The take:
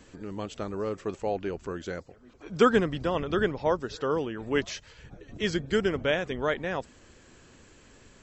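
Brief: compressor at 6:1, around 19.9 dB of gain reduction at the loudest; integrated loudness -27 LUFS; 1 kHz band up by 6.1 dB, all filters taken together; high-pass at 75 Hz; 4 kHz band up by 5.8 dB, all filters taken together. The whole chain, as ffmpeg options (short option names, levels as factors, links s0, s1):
-af "highpass=75,equalizer=f=1000:t=o:g=7.5,equalizer=f=4000:t=o:g=7.5,acompressor=threshold=0.0178:ratio=6,volume=4.22"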